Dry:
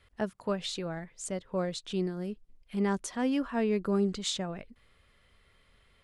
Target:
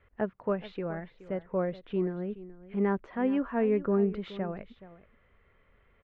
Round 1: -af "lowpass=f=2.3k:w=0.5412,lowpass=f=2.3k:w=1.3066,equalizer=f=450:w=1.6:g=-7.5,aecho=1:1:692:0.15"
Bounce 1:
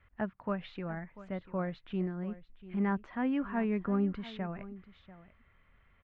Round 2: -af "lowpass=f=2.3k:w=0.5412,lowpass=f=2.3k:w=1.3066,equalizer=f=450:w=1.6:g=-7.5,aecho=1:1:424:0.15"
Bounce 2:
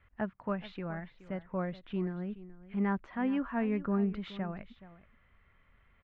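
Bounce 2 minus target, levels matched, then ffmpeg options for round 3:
500 Hz band -5.0 dB
-af "lowpass=f=2.3k:w=0.5412,lowpass=f=2.3k:w=1.3066,equalizer=f=450:w=1.6:g=3.5,aecho=1:1:424:0.15"

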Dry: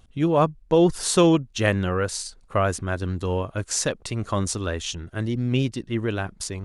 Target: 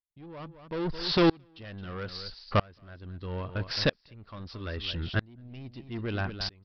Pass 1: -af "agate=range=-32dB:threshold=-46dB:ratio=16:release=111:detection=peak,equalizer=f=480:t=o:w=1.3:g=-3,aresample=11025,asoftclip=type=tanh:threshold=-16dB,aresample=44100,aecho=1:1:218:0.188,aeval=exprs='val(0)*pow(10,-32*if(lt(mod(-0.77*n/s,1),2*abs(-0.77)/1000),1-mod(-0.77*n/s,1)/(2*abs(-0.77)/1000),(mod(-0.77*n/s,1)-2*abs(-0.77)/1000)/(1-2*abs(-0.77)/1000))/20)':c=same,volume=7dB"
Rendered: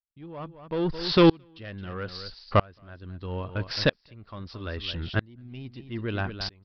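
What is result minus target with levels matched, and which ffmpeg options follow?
soft clip: distortion -7 dB
-af "agate=range=-32dB:threshold=-46dB:ratio=16:release=111:detection=peak,equalizer=f=480:t=o:w=1.3:g=-3,aresample=11025,asoftclip=type=tanh:threshold=-23.5dB,aresample=44100,aecho=1:1:218:0.188,aeval=exprs='val(0)*pow(10,-32*if(lt(mod(-0.77*n/s,1),2*abs(-0.77)/1000),1-mod(-0.77*n/s,1)/(2*abs(-0.77)/1000),(mod(-0.77*n/s,1)-2*abs(-0.77)/1000)/(1-2*abs(-0.77)/1000))/20)':c=same,volume=7dB"

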